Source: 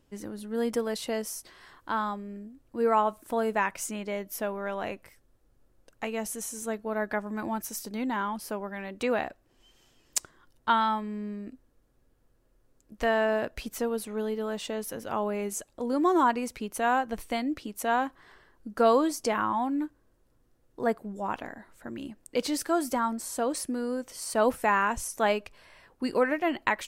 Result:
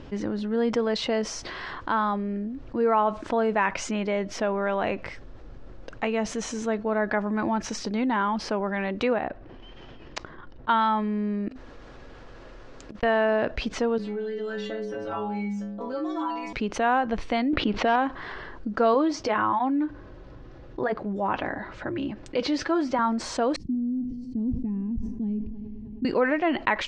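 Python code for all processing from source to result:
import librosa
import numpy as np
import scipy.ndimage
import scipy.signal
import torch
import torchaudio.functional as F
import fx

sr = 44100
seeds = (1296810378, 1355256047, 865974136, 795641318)

y = fx.chain(x, sr, fx.spacing_loss(db_at_10k=23),
    fx.level_steps(step_db=10), at=(9.13, 10.69))
y = fx.chain(y, sr, fx.over_compress(threshold_db=-52.0, ratio=-0.5),
    fx.low_shelf(hz=450.0, db=-11.5), at=(11.48, 13.03))
y = fx.chain(y, sr, fx.stiff_resonator(f0_hz=100.0, decay_s=0.81, stiffness=0.008),
    fx.band_squash(depth_pct=70), at=(13.98, 16.53))
y = fx.chain(y, sr, fx.lowpass(hz=4000.0, slope=24),
    fx.leveller(passes=1),
    fx.env_flatten(amount_pct=50), at=(17.53, 17.96))
y = fx.chain(y, sr, fx.lowpass(hz=6000.0, slope=12),
    fx.notch_comb(f0_hz=230.0), at=(18.94, 22.99))
y = fx.chain(y, sr, fx.cheby2_lowpass(hz=530.0, order=4, stop_db=40),
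    fx.echo_heads(ms=104, heads='first and third', feedback_pct=68, wet_db=-23),
    fx.sustainer(db_per_s=98.0), at=(23.56, 26.05))
y = scipy.signal.sosfilt(scipy.signal.bessel(6, 3500.0, 'lowpass', norm='mag', fs=sr, output='sos'), y)
y = fx.env_flatten(y, sr, amount_pct=50)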